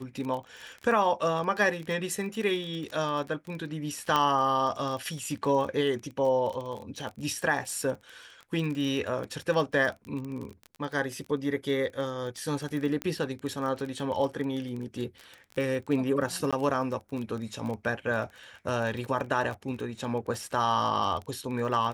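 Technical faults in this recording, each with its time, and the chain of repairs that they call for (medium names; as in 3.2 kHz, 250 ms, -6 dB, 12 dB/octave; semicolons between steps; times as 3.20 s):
crackle 21 per s -33 dBFS
4.16 s: pop -12 dBFS
13.02 s: pop -17 dBFS
16.51–16.53 s: dropout 16 ms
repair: de-click; interpolate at 16.51 s, 16 ms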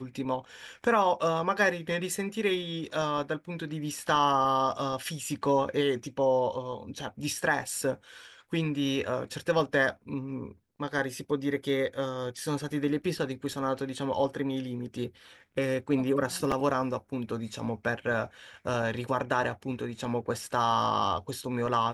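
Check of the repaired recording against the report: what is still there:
4.16 s: pop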